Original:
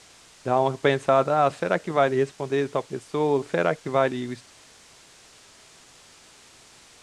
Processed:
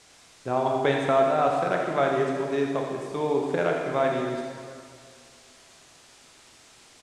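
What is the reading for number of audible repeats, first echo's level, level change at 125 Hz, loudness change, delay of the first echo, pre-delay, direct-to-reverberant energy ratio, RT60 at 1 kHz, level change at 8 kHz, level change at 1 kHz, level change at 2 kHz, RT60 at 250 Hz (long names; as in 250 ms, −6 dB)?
1, −9.5 dB, −3.0 dB, −1.5 dB, 83 ms, 19 ms, 0.0 dB, 2.2 s, −2.0 dB, −1.0 dB, −1.5 dB, 2.1 s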